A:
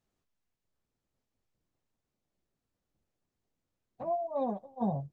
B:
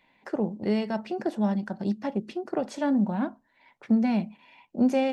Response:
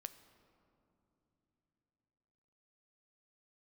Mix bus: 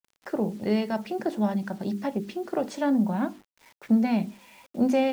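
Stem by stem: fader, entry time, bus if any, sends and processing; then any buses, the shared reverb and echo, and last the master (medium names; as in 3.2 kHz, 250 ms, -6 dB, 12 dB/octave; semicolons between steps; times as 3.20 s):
-19.0 dB, 0.00 s, send -4 dB, compressor with a negative ratio -43 dBFS, ratio -1; bass shelf 460 Hz -6.5 dB; small resonant body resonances 240/350/500 Hz, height 9 dB, ringing for 45 ms; auto duck -10 dB, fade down 0.20 s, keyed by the second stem
+1.5 dB, 0.00 s, no send, hum notches 50/100/150/200/250/300/350/400/450 Hz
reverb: on, pre-delay 8 ms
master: bit crusher 9-bit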